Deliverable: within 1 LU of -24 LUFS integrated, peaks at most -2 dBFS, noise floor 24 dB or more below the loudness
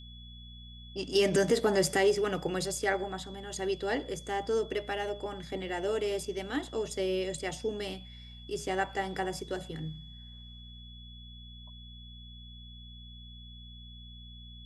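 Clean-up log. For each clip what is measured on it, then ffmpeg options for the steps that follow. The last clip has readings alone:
hum 60 Hz; highest harmonic 240 Hz; hum level -47 dBFS; steady tone 3.4 kHz; tone level -51 dBFS; loudness -32.0 LUFS; peak level -15.0 dBFS; loudness target -24.0 LUFS
-> -af "bandreject=f=60:t=h:w=4,bandreject=f=120:t=h:w=4,bandreject=f=180:t=h:w=4,bandreject=f=240:t=h:w=4"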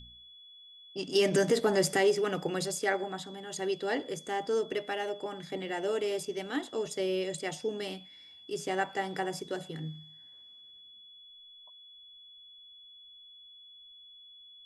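hum not found; steady tone 3.4 kHz; tone level -51 dBFS
-> -af "bandreject=f=3400:w=30"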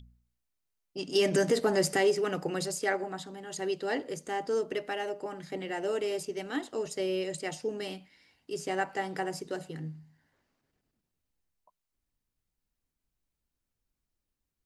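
steady tone not found; loudness -32.0 LUFS; peak level -15.0 dBFS; loudness target -24.0 LUFS
-> -af "volume=2.51"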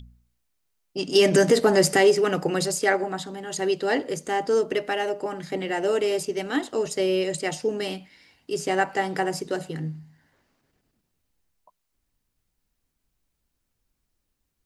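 loudness -24.0 LUFS; peak level -7.0 dBFS; noise floor -78 dBFS

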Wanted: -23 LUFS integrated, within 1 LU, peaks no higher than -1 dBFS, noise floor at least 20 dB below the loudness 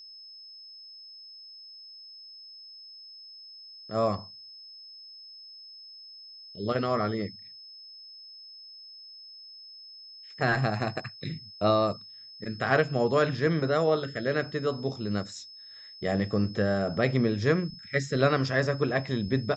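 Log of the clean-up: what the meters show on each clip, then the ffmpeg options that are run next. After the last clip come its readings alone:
steady tone 5.2 kHz; tone level -45 dBFS; loudness -28.0 LUFS; peak level -9.0 dBFS; loudness target -23.0 LUFS
-> -af "bandreject=f=5200:w=30"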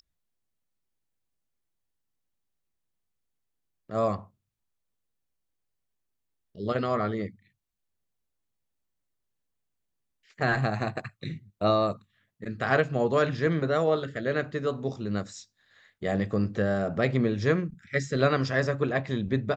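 steady tone not found; loudness -28.0 LUFS; peak level -9.0 dBFS; loudness target -23.0 LUFS
-> -af "volume=1.78"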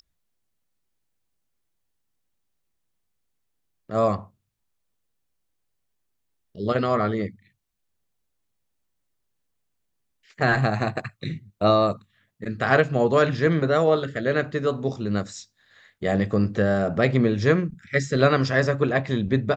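loudness -23.0 LUFS; peak level -4.0 dBFS; noise floor -75 dBFS

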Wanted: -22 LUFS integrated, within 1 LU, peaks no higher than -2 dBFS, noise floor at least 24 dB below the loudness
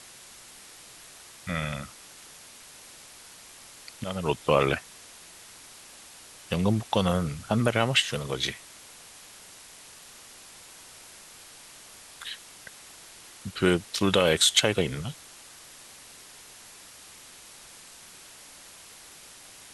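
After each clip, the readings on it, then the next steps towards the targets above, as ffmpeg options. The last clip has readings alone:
noise floor -49 dBFS; noise floor target -50 dBFS; loudness -26.0 LUFS; peak level -5.0 dBFS; loudness target -22.0 LUFS
-> -af "afftdn=nr=6:nf=-49"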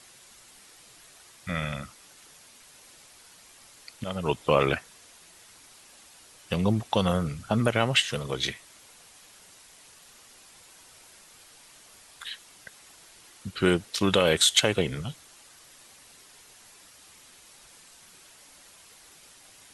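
noise floor -54 dBFS; loudness -26.0 LUFS; peak level -5.0 dBFS; loudness target -22.0 LUFS
-> -af "volume=1.58,alimiter=limit=0.794:level=0:latency=1"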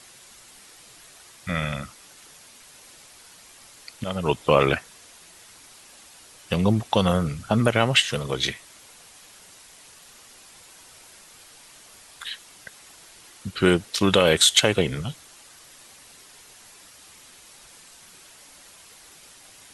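loudness -22.0 LUFS; peak level -2.0 dBFS; noise floor -50 dBFS

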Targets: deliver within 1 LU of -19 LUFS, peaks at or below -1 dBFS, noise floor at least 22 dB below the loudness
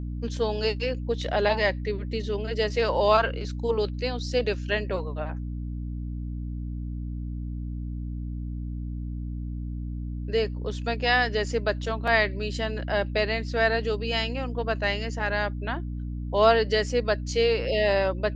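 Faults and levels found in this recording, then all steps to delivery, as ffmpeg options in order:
hum 60 Hz; highest harmonic 300 Hz; hum level -30 dBFS; loudness -27.0 LUFS; peak level -6.0 dBFS; loudness target -19.0 LUFS
-> -af "bandreject=f=60:t=h:w=6,bandreject=f=120:t=h:w=6,bandreject=f=180:t=h:w=6,bandreject=f=240:t=h:w=6,bandreject=f=300:t=h:w=6"
-af "volume=2.51,alimiter=limit=0.891:level=0:latency=1"

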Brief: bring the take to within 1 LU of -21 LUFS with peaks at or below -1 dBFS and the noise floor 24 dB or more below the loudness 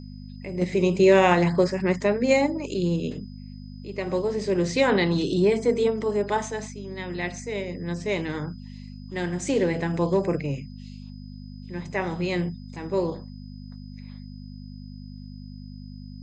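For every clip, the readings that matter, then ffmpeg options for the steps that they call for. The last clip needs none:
hum 50 Hz; highest harmonic 250 Hz; hum level -37 dBFS; steady tone 5 kHz; tone level -56 dBFS; loudness -24.5 LUFS; peak level -6.0 dBFS; loudness target -21.0 LUFS
-> -af "bandreject=f=50:t=h:w=4,bandreject=f=100:t=h:w=4,bandreject=f=150:t=h:w=4,bandreject=f=200:t=h:w=4,bandreject=f=250:t=h:w=4"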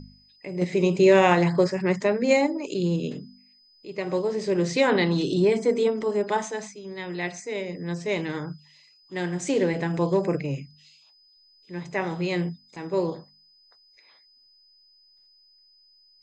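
hum not found; steady tone 5 kHz; tone level -56 dBFS
-> -af "bandreject=f=5000:w=30"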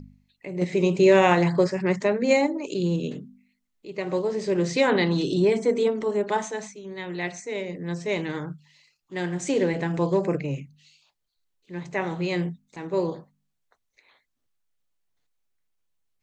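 steady tone not found; loudness -24.5 LUFS; peak level -6.0 dBFS; loudness target -21.0 LUFS
-> -af "volume=1.5"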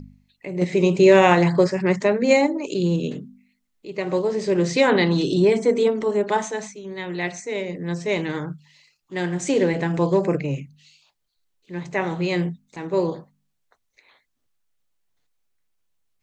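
loudness -21.0 LUFS; peak level -2.5 dBFS; noise floor -73 dBFS

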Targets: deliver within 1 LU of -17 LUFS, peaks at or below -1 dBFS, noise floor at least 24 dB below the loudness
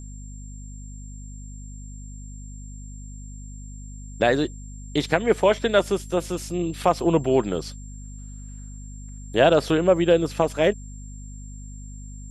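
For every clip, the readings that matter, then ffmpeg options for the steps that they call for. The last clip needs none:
hum 50 Hz; highest harmonic 250 Hz; hum level -36 dBFS; steady tone 7.4 kHz; tone level -47 dBFS; loudness -22.0 LUFS; peak level -2.0 dBFS; loudness target -17.0 LUFS
-> -af "bandreject=f=50:t=h:w=4,bandreject=f=100:t=h:w=4,bandreject=f=150:t=h:w=4,bandreject=f=200:t=h:w=4,bandreject=f=250:t=h:w=4"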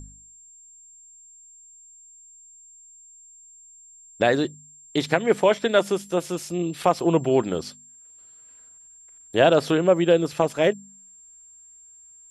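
hum not found; steady tone 7.4 kHz; tone level -47 dBFS
-> -af "bandreject=f=7400:w=30"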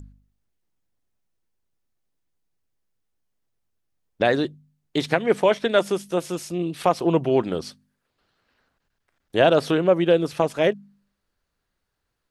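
steady tone not found; loudness -22.0 LUFS; peak level -2.0 dBFS; loudness target -17.0 LUFS
-> -af "volume=1.78,alimiter=limit=0.891:level=0:latency=1"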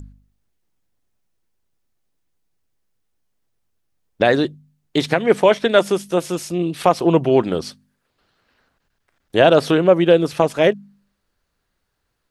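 loudness -17.5 LUFS; peak level -1.0 dBFS; noise floor -73 dBFS

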